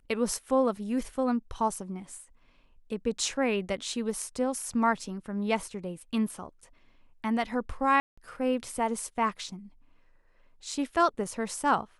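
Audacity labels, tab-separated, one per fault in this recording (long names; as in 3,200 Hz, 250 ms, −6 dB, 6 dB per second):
8.000000	8.180000	drop-out 175 ms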